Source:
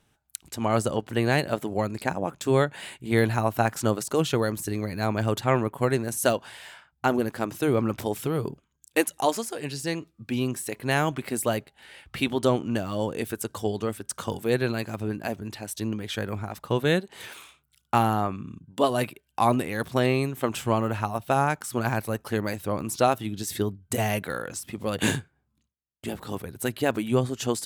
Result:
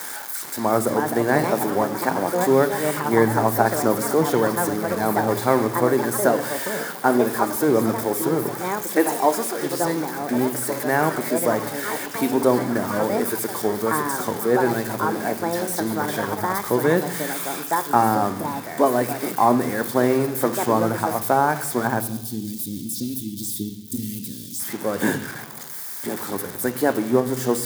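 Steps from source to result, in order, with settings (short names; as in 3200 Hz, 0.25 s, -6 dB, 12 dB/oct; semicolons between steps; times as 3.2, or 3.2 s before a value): switching spikes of -14 dBFS; HPF 160 Hz 12 dB/oct; echoes that change speed 0.476 s, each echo +5 st, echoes 3, each echo -6 dB; 22.01–24.6 elliptic band-stop 270–3300 Hz, stop band 80 dB; reverb RT60 1.1 s, pre-delay 3 ms, DRR 11 dB; gain -10 dB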